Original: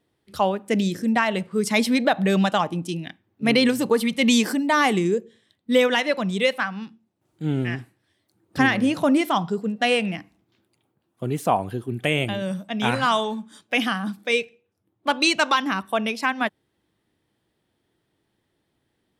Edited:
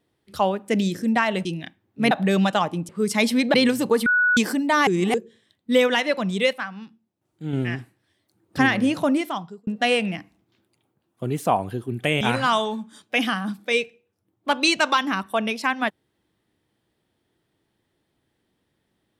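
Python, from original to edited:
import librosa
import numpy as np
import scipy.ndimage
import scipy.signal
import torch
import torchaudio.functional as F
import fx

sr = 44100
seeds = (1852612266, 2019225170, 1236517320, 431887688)

y = fx.edit(x, sr, fx.swap(start_s=1.45, length_s=0.65, other_s=2.88, other_length_s=0.66),
    fx.bleep(start_s=4.06, length_s=0.31, hz=1470.0, db=-15.5),
    fx.reverse_span(start_s=4.87, length_s=0.27),
    fx.clip_gain(start_s=6.53, length_s=1.0, db=-5.0),
    fx.fade_out_span(start_s=8.96, length_s=0.71),
    fx.cut(start_s=12.21, length_s=0.59), tone=tone)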